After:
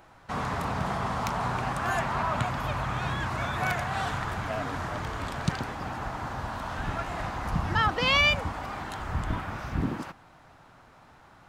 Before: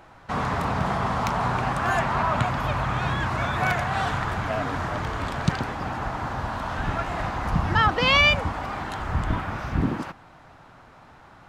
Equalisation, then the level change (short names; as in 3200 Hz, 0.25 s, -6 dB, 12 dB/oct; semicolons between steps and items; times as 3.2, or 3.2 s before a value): high shelf 6300 Hz +7 dB; -5.0 dB